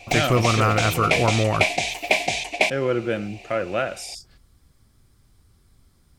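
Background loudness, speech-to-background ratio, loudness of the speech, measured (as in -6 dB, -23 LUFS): -23.0 LUFS, 0.0 dB, -23.0 LUFS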